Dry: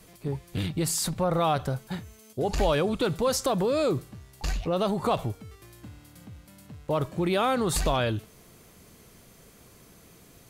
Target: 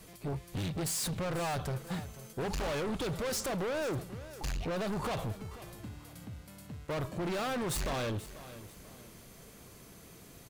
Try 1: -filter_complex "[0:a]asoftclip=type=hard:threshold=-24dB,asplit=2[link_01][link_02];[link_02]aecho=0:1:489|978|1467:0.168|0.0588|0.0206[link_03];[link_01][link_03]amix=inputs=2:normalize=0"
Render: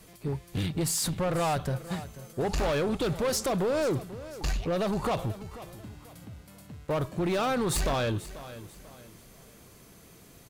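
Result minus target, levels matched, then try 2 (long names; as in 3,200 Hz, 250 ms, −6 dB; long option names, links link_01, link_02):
hard clipping: distortion −6 dB
-filter_complex "[0:a]asoftclip=type=hard:threshold=-32.5dB,asplit=2[link_01][link_02];[link_02]aecho=0:1:489|978|1467:0.168|0.0588|0.0206[link_03];[link_01][link_03]amix=inputs=2:normalize=0"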